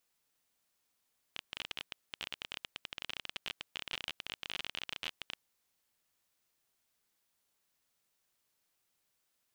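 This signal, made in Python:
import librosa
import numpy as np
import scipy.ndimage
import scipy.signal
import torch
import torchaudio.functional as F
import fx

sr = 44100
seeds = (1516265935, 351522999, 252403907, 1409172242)

y = fx.geiger_clicks(sr, seeds[0], length_s=4.01, per_s=26.0, level_db=-21.5)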